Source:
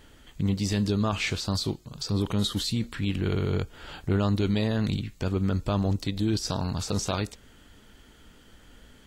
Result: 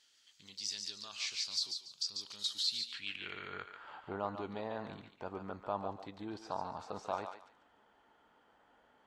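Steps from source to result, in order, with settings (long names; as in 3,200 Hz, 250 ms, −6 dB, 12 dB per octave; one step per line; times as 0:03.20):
band-pass filter sweep 5,100 Hz → 850 Hz, 0:02.55–0:04.06
feedback echo with a high-pass in the loop 143 ms, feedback 26%, high-pass 870 Hz, level −5.5 dB
level −1 dB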